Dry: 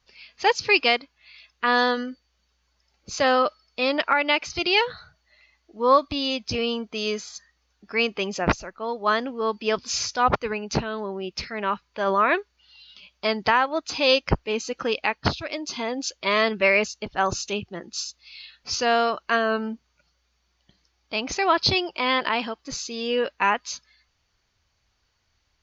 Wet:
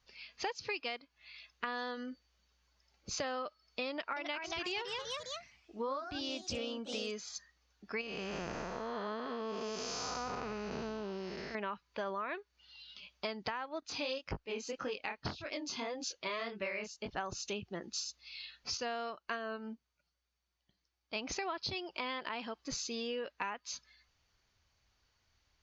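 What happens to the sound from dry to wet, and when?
3.89–7.20 s: ever faster or slower copies 274 ms, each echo +2 st, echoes 3, each echo -6 dB
8.01–11.55 s: spectral blur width 436 ms
13.80–17.11 s: chorus 1.8 Hz, delay 20 ms, depth 7.8 ms
18.77–21.16 s: upward expansion, over -42 dBFS
whole clip: compression 10:1, threshold -31 dBFS; trim -4.5 dB

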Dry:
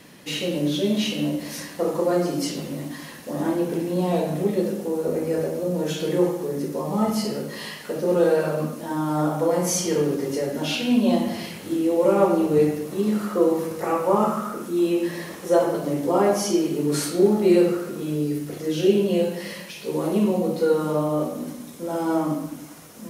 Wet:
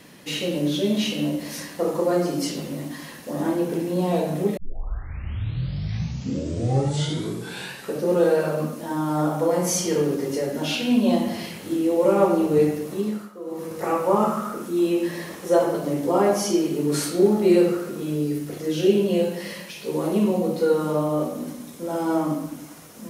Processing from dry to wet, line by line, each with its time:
4.57 s: tape start 3.55 s
12.91–13.85 s: dip -17.5 dB, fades 0.41 s linear

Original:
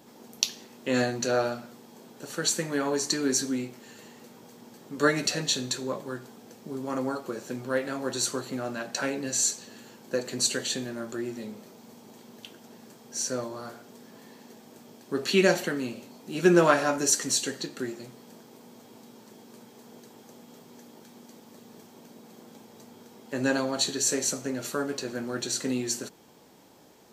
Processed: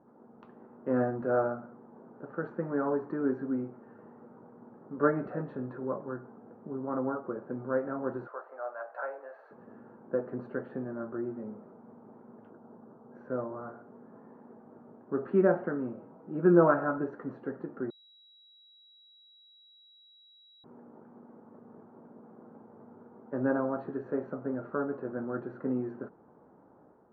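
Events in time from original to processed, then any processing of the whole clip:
8.27–9.51 s: elliptic band-pass 570–5100 Hz, stop band 50 dB
12.50–13.15 s: high-order bell 3.7 kHz -10 dB 2.3 oct
15.97–17.04 s: comb 6.2 ms, depth 48%
17.90–20.64 s: bleep 3.88 kHz -8 dBFS
whole clip: Chebyshev low-pass 1.4 kHz, order 4; level rider gain up to 4.5 dB; trim -6 dB

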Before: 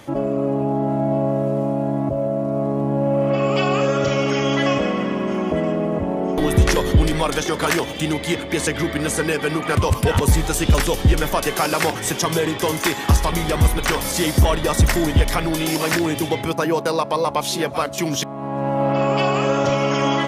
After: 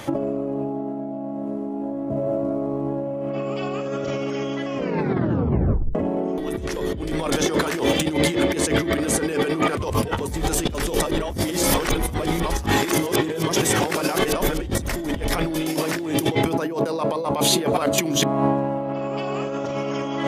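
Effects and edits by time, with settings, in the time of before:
0.61–2.95 s: reverb throw, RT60 2.5 s, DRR 5 dB
4.75 s: tape stop 1.20 s
11.00–14.75 s: reverse
17.01–18.27 s: band-stop 5.4 kHz, Q 6.4
whole clip: hum notches 50/100/150/200/250/300/350/400/450 Hz; dynamic bell 340 Hz, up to +7 dB, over -33 dBFS, Q 0.8; compressor with a negative ratio -24 dBFS, ratio -1

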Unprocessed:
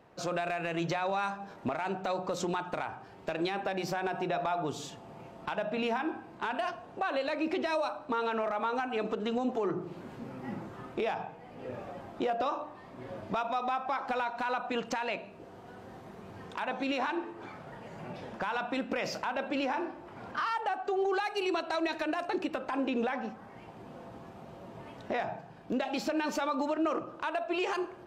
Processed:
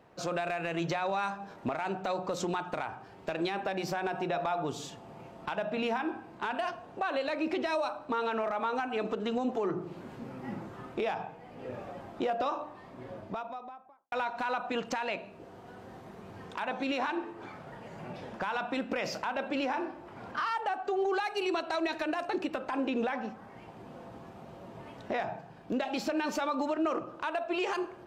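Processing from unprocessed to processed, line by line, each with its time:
12.80–14.12 s: studio fade out

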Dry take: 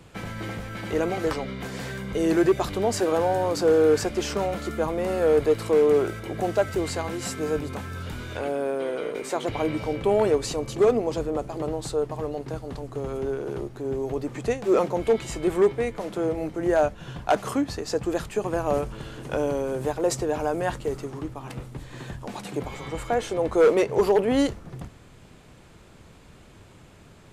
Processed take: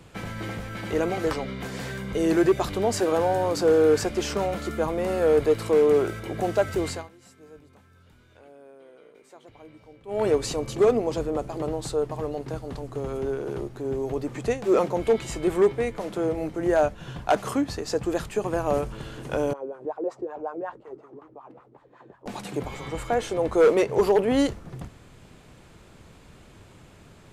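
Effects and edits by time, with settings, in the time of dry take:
6.87–10.29 s: dip -22 dB, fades 0.22 s
19.53–22.26 s: wah-wah 5.4 Hz 320–1200 Hz, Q 3.7

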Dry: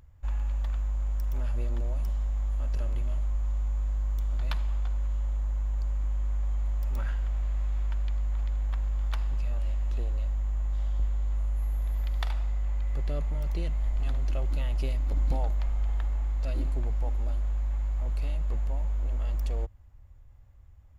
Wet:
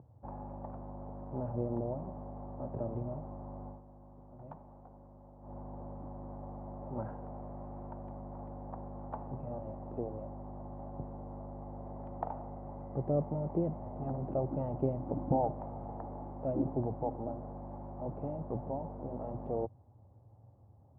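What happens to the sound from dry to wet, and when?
3.67–5.54 s: dip -10.5 dB, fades 0.14 s
whole clip: Chebyshev band-pass 120–830 Hz, order 3; trim +8.5 dB

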